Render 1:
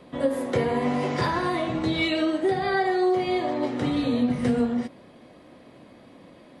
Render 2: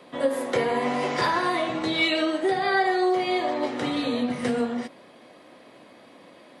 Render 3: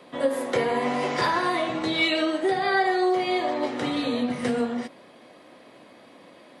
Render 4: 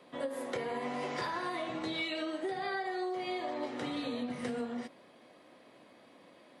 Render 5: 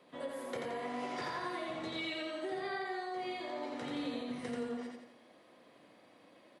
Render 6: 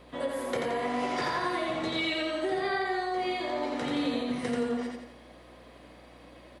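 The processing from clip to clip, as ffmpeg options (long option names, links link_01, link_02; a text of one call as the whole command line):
ffmpeg -i in.wav -af "highpass=frequency=550:poles=1,volume=4dB" out.wav
ffmpeg -i in.wav -af anull out.wav
ffmpeg -i in.wav -af "acompressor=threshold=-24dB:ratio=6,volume=-8.5dB" out.wav
ffmpeg -i in.wav -af "aecho=1:1:86|172|258|344|430|516:0.708|0.34|0.163|0.0783|0.0376|0.018,volume=-5dB" out.wav
ffmpeg -i in.wav -af "aeval=exprs='val(0)+0.000501*(sin(2*PI*60*n/s)+sin(2*PI*2*60*n/s)/2+sin(2*PI*3*60*n/s)/3+sin(2*PI*4*60*n/s)/4+sin(2*PI*5*60*n/s)/5)':channel_layout=same,volume=9dB" out.wav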